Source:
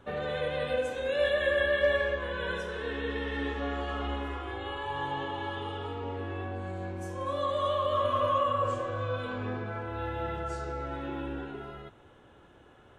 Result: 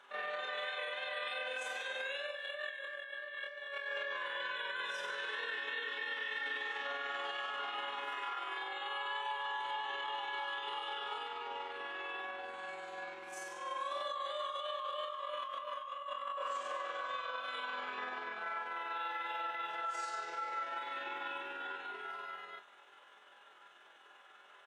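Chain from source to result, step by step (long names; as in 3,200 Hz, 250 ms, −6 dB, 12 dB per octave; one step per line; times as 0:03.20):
high-pass filter 1,200 Hz 12 dB per octave
high-shelf EQ 7,100 Hz −8 dB
comb filter 5 ms, depth 34%
compressor whose output falls as the input rises −38 dBFS, ratio −0.5
brickwall limiter −34 dBFS, peak gain reduction 8.5 dB
time stretch by overlap-add 1.9×, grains 98 ms
level +4 dB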